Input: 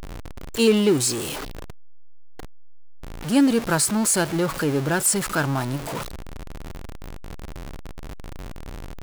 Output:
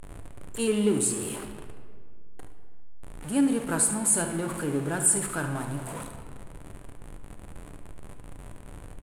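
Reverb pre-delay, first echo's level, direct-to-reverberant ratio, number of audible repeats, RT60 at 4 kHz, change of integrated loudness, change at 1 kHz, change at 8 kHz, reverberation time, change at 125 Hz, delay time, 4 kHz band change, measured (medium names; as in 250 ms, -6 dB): 7 ms, -11.0 dB, 4.5 dB, 1, 1.2 s, -4.5 dB, -7.5 dB, -1.5 dB, 1.9 s, -6.5 dB, 72 ms, -12.5 dB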